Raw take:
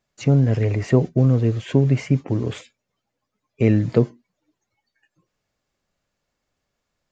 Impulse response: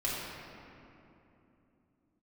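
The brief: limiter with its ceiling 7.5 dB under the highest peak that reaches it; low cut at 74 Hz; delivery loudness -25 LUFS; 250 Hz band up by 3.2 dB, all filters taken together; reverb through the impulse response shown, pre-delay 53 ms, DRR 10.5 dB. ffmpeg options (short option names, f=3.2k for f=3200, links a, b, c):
-filter_complex "[0:a]highpass=74,equalizer=f=250:t=o:g=4,alimiter=limit=-9.5dB:level=0:latency=1,asplit=2[a][b];[1:a]atrim=start_sample=2205,adelay=53[c];[b][c]afir=irnorm=-1:irlink=0,volume=-17.5dB[d];[a][d]amix=inputs=2:normalize=0,volume=-4.5dB"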